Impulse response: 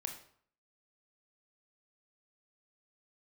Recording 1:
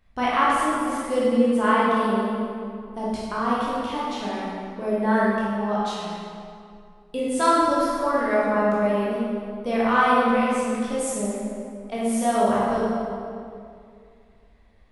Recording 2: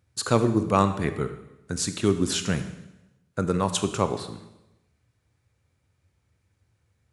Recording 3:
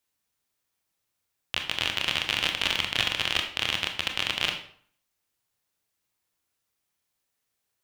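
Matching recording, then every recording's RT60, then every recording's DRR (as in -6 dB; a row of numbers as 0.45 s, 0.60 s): 3; 2.4 s, 0.95 s, 0.55 s; -7.5 dB, 9.5 dB, 3.5 dB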